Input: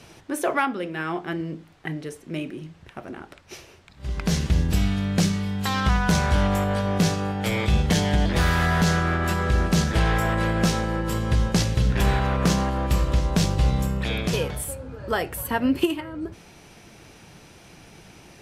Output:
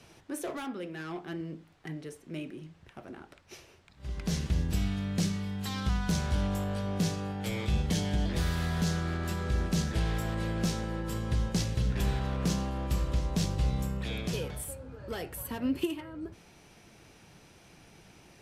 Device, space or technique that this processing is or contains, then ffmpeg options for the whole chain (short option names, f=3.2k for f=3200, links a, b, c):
one-band saturation: -filter_complex "[0:a]acrossover=split=470|3000[a][b][c];[b]asoftclip=type=tanh:threshold=-32.5dB[d];[a][d][c]amix=inputs=3:normalize=0,volume=-8dB"